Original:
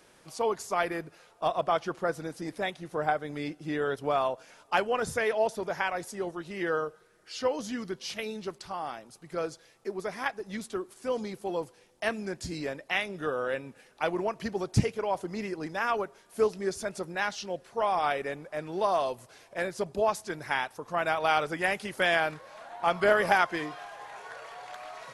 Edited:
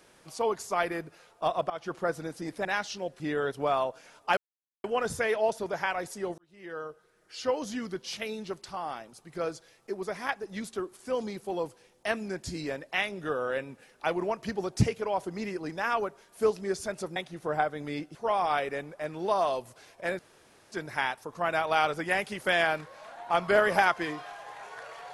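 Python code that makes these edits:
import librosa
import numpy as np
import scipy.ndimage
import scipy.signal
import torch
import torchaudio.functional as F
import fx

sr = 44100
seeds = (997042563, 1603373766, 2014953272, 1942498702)

y = fx.edit(x, sr, fx.fade_in_from(start_s=1.7, length_s=0.25, floor_db=-19.0),
    fx.swap(start_s=2.65, length_s=0.99, other_s=17.13, other_length_s=0.55),
    fx.insert_silence(at_s=4.81, length_s=0.47),
    fx.fade_in_span(start_s=6.35, length_s=1.14),
    fx.room_tone_fill(start_s=19.72, length_s=0.53), tone=tone)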